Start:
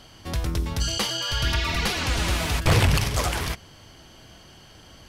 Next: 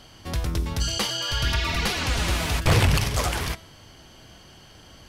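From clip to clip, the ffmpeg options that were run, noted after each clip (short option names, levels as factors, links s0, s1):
-af "bandreject=f=326.6:t=h:w=4,bandreject=f=653.2:t=h:w=4,bandreject=f=979.8:t=h:w=4,bandreject=f=1306.4:t=h:w=4,bandreject=f=1633:t=h:w=4,bandreject=f=1959.6:t=h:w=4,bandreject=f=2286.2:t=h:w=4,bandreject=f=2612.8:t=h:w=4,bandreject=f=2939.4:t=h:w=4,bandreject=f=3266:t=h:w=4,bandreject=f=3592.6:t=h:w=4,bandreject=f=3919.2:t=h:w=4,bandreject=f=4245.8:t=h:w=4,bandreject=f=4572.4:t=h:w=4,bandreject=f=4899:t=h:w=4,bandreject=f=5225.6:t=h:w=4,bandreject=f=5552.2:t=h:w=4,bandreject=f=5878.8:t=h:w=4,bandreject=f=6205.4:t=h:w=4,bandreject=f=6532:t=h:w=4,bandreject=f=6858.6:t=h:w=4,bandreject=f=7185.2:t=h:w=4,bandreject=f=7511.8:t=h:w=4,bandreject=f=7838.4:t=h:w=4,bandreject=f=8165:t=h:w=4,bandreject=f=8491.6:t=h:w=4,bandreject=f=8818.2:t=h:w=4,bandreject=f=9144.8:t=h:w=4,bandreject=f=9471.4:t=h:w=4,bandreject=f=9798:t=h:w=4,bandreject=f=10124.6:t=h:w=4,bandreject=f=10451.2:t=h:w=4,bandreject=f=10777.8:t=h:w=4,bandreject=f=11104.4:t=h:w=4,bandreject=f=11431:t=h:w=4,bandreject=f=11757.6:t=h:w=4,bandreject=f=12084.2:t=h:w=4"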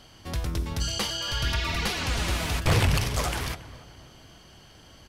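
-filter_complex "[0:a]asplit=2[s0][s1];[s1]adelay=278,lowpass=f=2000:p=1,volume=0.15,asplit=2[s2][s3];[s3]adelay=278,lowpass=f=2000:p=1,volume=0.54,asplit=2[s4][s5];[s5]adelay=278,lowpass=f=2000:p=1,volume=0.54,asplit=2[s6][s7];[s7]adelay=278,lowpass=f=2000:p=1,volume=0.54,asplit=2[s8][s9];[s9]adelay=278,lowpass=f=2000:p=1,volume=0.54[s10];[s0][s2][s4][s6][s8][s10]amix=inputs=6:normalize=0,volume=0.708"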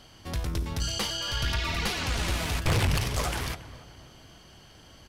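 -af "aeval=exprs='(tanh(7.94*val(0)+0.3)-tanh(0.3))/7.94':c=same"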